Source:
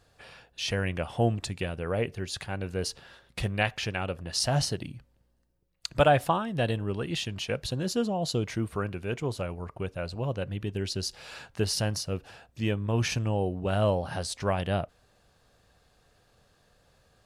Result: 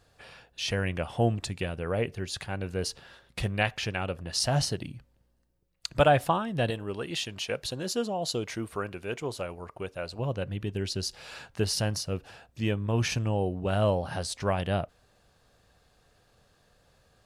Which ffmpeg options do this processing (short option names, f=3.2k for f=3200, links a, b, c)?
-filter_complex "[0:a]asettb=1/sr,asplit=3[a][b][c];[a]atrim=end=6.704[d];[b]atrim=start=6.7:end=10.19,asetpts=PTS-STARTPTS,afade=t=in:d=0.004:c=qsin,afade=t=out:st=3.486:d=0.004:c=qsin,bass=f=250:g=-8,treble=f=4k:g=2[e];[c]atrim=start=10.186[f];[d][e]acrossfade=d=0.004:c1=hsin:c2=qsin[g];[g][f]acrossfade=d=0.004:c1=qsin:c2=hsin"